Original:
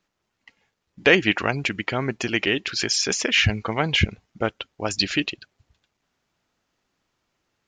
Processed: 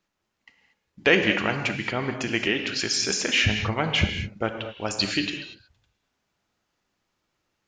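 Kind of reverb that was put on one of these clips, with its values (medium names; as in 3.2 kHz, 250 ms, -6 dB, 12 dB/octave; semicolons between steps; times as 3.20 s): gated-style reverb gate 260 ms flat, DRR 5 dB; trim -3 dB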